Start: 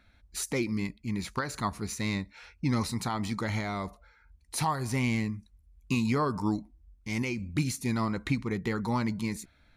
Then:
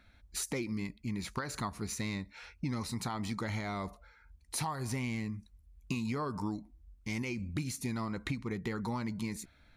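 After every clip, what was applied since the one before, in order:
downward compressor 4 to 1, threshold −33 dBFS, peak gain reduction 9.5 dB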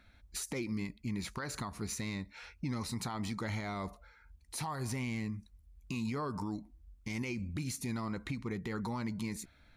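brickwall limiter −28 dBFS, peak gain reduction 6 dB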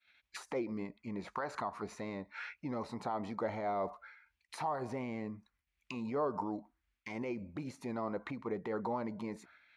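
downward expander −56 dBFS
envelope filter 590–2,800 Hz, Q 2, down, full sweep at −34 dBFS
level +10 dB

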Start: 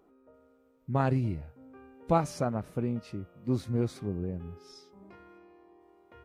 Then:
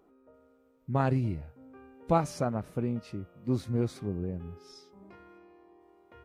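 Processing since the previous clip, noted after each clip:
no processing that can be heard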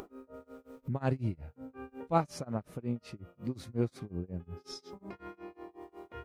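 upward compression, threshold −31 dBFS
amplitude tremolo 5.5 Hz, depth 97%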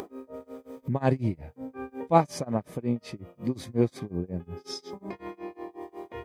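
notch comb filter 1,400 Hz
level +8.5 dB

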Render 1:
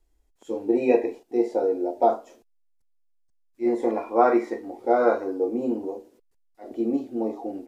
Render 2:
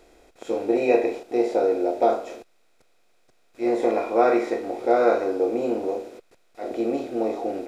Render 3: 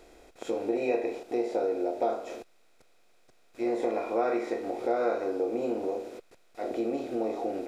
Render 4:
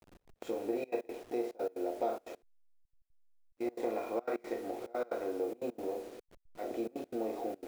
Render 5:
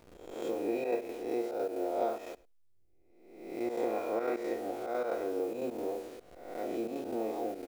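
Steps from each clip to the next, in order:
compressor on every frequency bin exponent 0.6; octave-band graphic EQ 250/1,000/4,000 Hz −9/−9/+4 dB; level +2.5 dB
downward compressor 2 to 1, threshold −31 dBFS, peak gain reduction 10 dB
hold until the input has moved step −46 dBFS; gate pattern "xx.x.xxx" 179 BPM −24 dB; level −5.5 dB
peak hold with a rise ahead of every peak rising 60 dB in 0.89 s; single-tap delay 104 ms −22.5 dB

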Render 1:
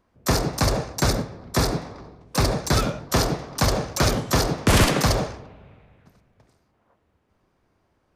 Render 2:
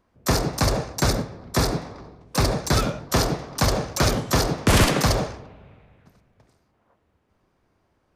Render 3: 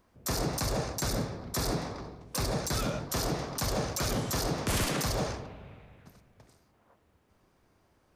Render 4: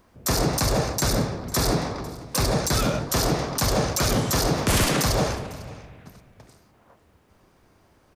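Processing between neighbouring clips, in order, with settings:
no processing that can be heard
high-shelf EQ 5,400 Hz +7.5 dB; downward compressor, threshold −21 dBFS, peak gain reduction 8.5 dB; brickwall limiter −21.5 dBFS, peak gain reduction 11 dB
single-tap delay 500 ms −21 dB; level +8.5 dB

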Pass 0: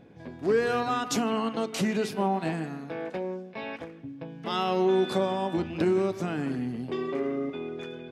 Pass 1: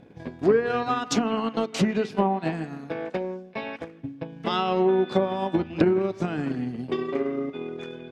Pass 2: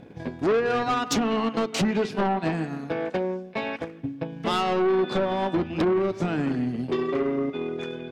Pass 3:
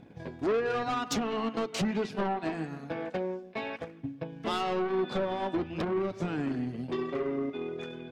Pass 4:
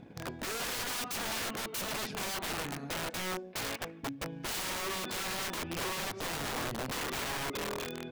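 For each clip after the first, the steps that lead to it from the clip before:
transient designer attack +7 dB, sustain −5 dB; treble cut that deepens with the level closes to 2,200 Hz, closed at −18.5 dBFS; level +1.5 dB
soft clipping −23 dBFS, distortion −8 dB; level +4.5 dB
flanger 1 Hz, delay 0.8 ms, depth 2.3 ms, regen −64%; level −2 dB
wrap-around overflow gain 32 dB; level +1 dB

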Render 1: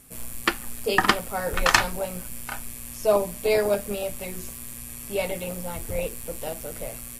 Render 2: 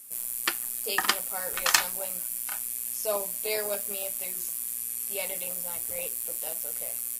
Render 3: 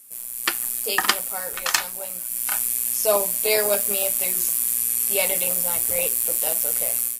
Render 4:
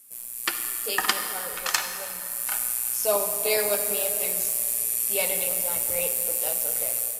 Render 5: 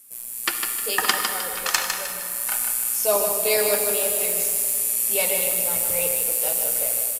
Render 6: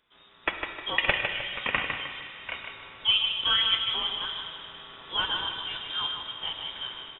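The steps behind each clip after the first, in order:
RIAA equalisation recording; level −8 dB
automatic gain control gain up to 16.5 dB; level −1 dB
convolution reverb RT60 2.9 s, pre-delay 42 ms, DRR 6.5 dB; level −4 dB
repeating echo 154 ms, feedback 37%, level −6 dB; level +2.5 dB
voice inversion scrambler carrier 3,700 Hz; level −2 dB

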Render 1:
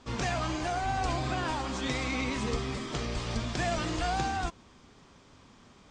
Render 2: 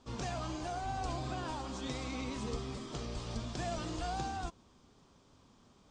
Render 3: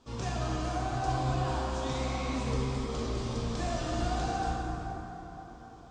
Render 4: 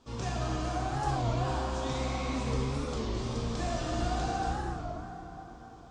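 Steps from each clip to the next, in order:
parametric band 2,000 Hz −7.5 dB 0.95 octaves; level −6.5 dB
dense smooth reverb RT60 4.5 s, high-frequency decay 0.45×, DRR −4.5 dB
wow of a warped record 33 1/3 rpm, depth 160 cents

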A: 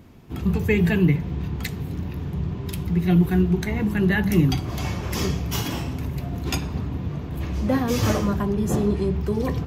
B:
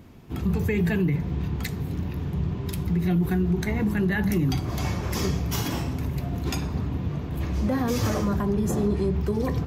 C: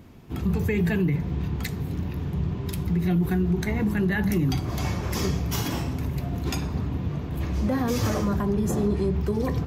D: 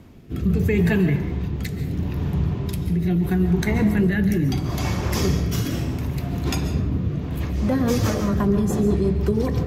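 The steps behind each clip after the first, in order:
dynamic equaliser 2,900 Hz, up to −4 dB, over −50 dBFS, Q 2.8; brickwall limiter −16 dBFS, peak gain reduction 8.5 dB
no processing that can be heard
rotating-speaker cabinet horn 0.75 Hz, later 6 Hz, at 0:07.08; convolution reverb RT60 0.70 s, pre-delay 100 ms, DRR 9 dB; level +5 dB

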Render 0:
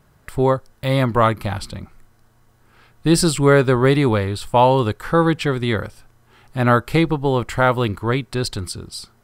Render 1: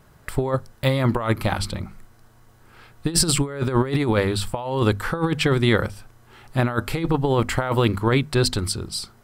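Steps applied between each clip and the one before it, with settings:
mains-hum notches 50/100/150/200/250 Hz
compressor whose output falls as the input rises −19 dBFS, ratio −0.5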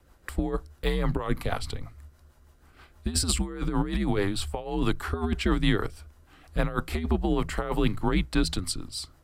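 frequency shifter −88 Hz
rotating-speaker cabinet horn 6.3 Hz
level −3.5 dB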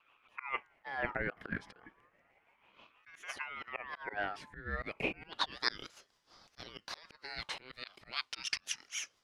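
volume swells 160 ms
band-pass filter sweep 710 Hz → 3,200 Hz, 0:04.43–0:05.71
ring modulator whose carrier an LFO sweeps 1,400 Hz, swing 35%, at 0.32 Hz
level +6 dB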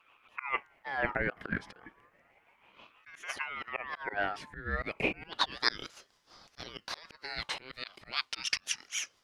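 tape wow and flutter 26 cents
level +4.5 dB

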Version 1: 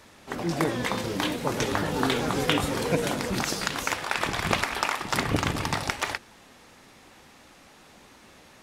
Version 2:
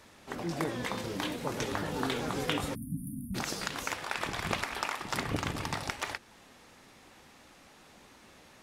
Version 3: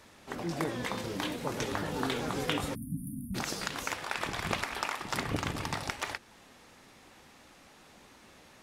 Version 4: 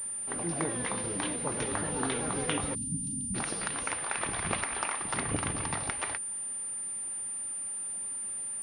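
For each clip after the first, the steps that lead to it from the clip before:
time-frequency box erased 0:02.75–0:03.35, 280–9,100 Hz; in parallel at −2 dB: downward compressor, threshold −34 dBFS, peak gain reduction 15.5 dB; on the sum: level −9 dB
no processing that can be heard
switching amplifier with a slow clock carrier 9,200 Hz

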